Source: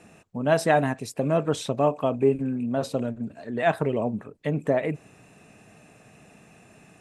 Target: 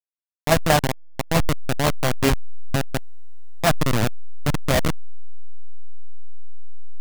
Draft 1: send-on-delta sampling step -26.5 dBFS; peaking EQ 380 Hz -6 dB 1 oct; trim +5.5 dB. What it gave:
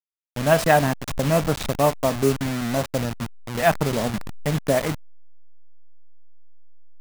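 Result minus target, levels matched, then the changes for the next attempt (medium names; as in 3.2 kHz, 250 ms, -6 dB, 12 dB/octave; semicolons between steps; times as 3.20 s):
send-on-delta sampling: distortion -16 dB
change: send-on-delta sampling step -15 dBFS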